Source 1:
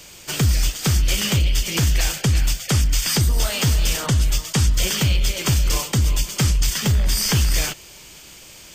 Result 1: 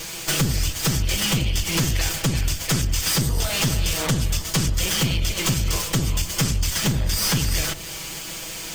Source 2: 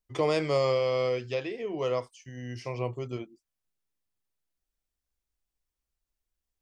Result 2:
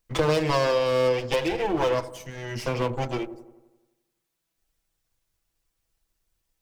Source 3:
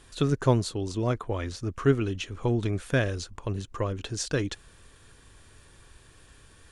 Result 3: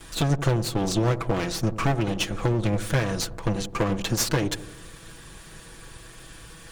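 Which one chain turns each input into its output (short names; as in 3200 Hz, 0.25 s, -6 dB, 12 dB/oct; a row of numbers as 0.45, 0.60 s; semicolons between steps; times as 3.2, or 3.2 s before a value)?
minimum comb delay 6.1 ms; compressor 5:1, threshold -31 dBFS; wavefolder -25 dBFS; dark delay 86 ms, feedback 59%, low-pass 850 Hz, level -13 dB; normalise peaks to -12 dBFS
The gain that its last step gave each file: +11.5, +11.0, +11.5 dB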